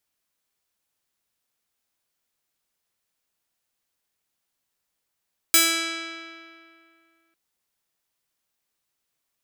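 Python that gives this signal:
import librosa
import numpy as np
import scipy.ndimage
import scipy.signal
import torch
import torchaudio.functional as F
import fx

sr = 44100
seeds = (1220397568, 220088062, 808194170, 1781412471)

y = fx.pluck(sr, length_s=1.8, note=64, decay_s=2.38, pick=0.36, brightness='bright')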